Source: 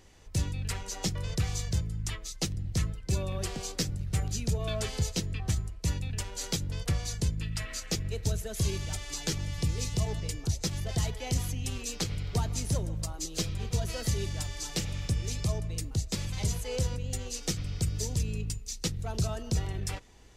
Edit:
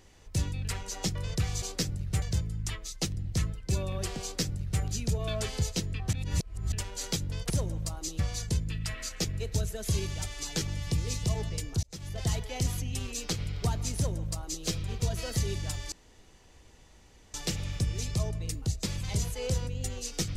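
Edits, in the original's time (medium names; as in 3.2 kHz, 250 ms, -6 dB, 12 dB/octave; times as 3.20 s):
3.62–4.22 s: copy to 1.62 s
5.53–6.12 s: reverse
10.54–10.97 s: fade in
12.67–13.36 s: copy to 6.90 s
14.63 s: insert room tone 1.42 s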